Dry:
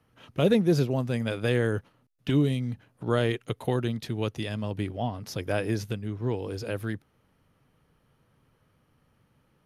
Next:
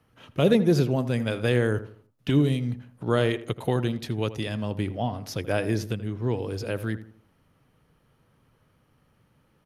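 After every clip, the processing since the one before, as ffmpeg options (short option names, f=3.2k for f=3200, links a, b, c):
-filter_complex "[0:a]asplit=2[a][b];[b]adelay=81,lowpass=f=1.7k:p=1,volume=-13dB,asplit=2[c][d];[d]adelay=81,lowpass=f=1.7k:p=1,volume=0.38,asplit=2[e][f];[f]adelay=81,lowpass=f=1.7k:p=1,volume=0.38,asplit=2[g][h];[h]adelay=81,lowpass=f=1.7k:p=1,volume=0.38[i];[a][c][e][g][i]amix=inputs=5:normalize=0,volume=2dB"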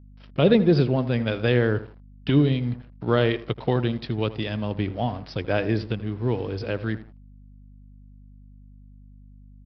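-af "aresample=11025,aeval=exprs='sgn(val(0))*max(abs(val(0))-0.00355,0)':c=same,aresample=44100,aeval=exprs='val(0)+0.00355*(sin(2*PI*50*n/s)+sin(2*PI*2*50*n/s)/2+sin(2*PI*3*50*n/s)/3+sin(2*PI*4*50*n/s)/4+sin(2*PI*5*50*n/s)/5)':c=same,volume=2.5dB"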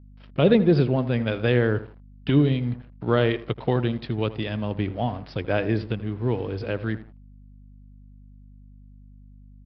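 -af "lowpass=4k"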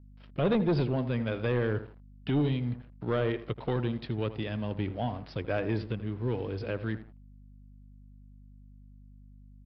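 -filter_complex "[0:a]acrossover=split=2200[a][b];[a]asoftclip=type=tanh:threshold=-16.5dB[c];[b]alimiter=level_in=6dB:limit=-24dB:level=0:latency=1:release=134,volume=-6dB[d];[c][d]amix=inputs=2:normalize=0,volume=-4.5dB"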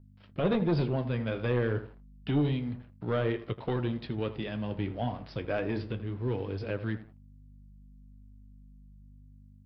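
-af "flanger=delay=8.9:depth=8.1:regen=-57:speed=0.3:shape=triangular,volume=3.5dB"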